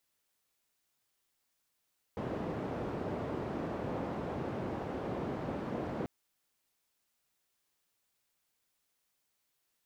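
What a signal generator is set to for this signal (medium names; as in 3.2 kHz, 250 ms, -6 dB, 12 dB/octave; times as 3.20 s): noise band 85–520 Hz, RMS -37.5 dBFS 3.89 s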